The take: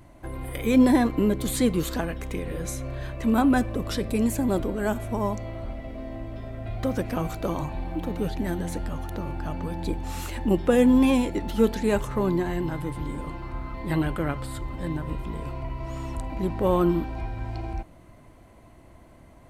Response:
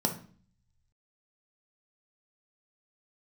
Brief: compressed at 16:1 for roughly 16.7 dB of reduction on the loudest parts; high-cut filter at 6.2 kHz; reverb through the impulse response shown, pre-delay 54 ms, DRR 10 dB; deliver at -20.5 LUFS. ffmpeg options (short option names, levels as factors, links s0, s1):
-filter_complex "[0:a]lowpass=6200,acompressor=threshold=0.0282:ratio=16,asplit=2[s0][s1];[1:a]atrim=start_sample=2205,adelay=54[s2];[s1][s2]afir=irnorm=-1:irlink=0,volume=0.133[s3];[s0][s3]amix=inputs=2:normalize=0,volume=5.31"